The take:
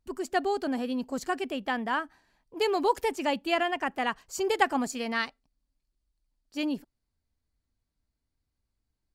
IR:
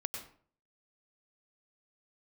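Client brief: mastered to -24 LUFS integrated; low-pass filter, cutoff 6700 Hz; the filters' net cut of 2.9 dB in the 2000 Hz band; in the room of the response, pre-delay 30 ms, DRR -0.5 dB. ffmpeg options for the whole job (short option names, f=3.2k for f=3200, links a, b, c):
-filter_complex "[0:a]lowpass=6.7k,equalizer=f=2k:t=o:g=-3.5,asplit=2[a][b];[1:a]atrim=start_sample=2205,adelay=30[c];[b][c]afir=irnorm=-1:irlink=0,volume=0dB[d];[a][d]amix=inputs=2:normalize=0,volume=3dB"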